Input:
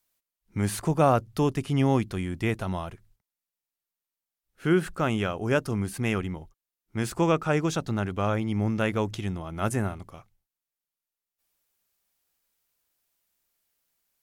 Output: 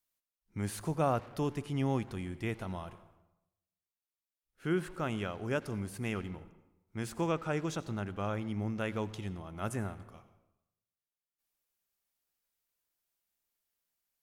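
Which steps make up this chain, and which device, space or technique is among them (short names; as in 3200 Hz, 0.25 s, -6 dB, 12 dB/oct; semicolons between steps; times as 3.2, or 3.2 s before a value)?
saturated reverb return (on a send at -11 dB: reverb RT60 0.90 s, pre-delay 76 ms + soft clip -28.5 dBFS, distortion -7 dB); on the sum: gain -9 dB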